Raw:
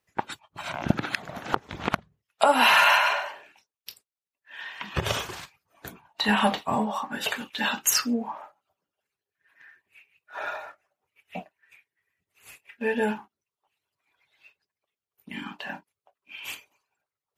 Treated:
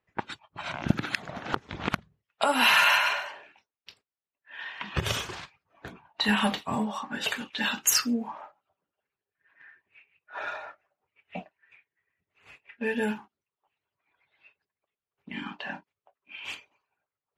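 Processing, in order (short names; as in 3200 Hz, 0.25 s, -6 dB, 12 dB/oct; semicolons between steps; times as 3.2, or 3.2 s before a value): dynamic EQ 710 Hz, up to -7 dB, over -37 dBFS, Q 0.87; low-pass opened by the level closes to 2500 Hz, open at -25 dBFS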